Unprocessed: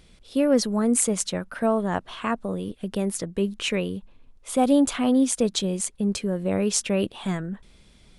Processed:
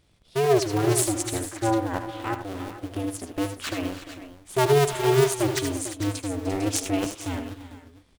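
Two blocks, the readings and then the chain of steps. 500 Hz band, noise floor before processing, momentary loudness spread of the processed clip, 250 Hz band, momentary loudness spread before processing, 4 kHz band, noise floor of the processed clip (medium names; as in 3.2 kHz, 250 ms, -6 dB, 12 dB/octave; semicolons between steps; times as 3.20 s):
+1.5 dB, -55 dBFS, 14 LU, -5.0 dB, 10 LU, -1.5 dB, -59 dBFS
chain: cycle switcher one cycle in 2, inverted; multi-tap echo 78/96/300/346/450/484 ms -8/-17.5/-14/-10.5/-10/-18.5 dB; upward expansion 1.5:1, over -36 dBFS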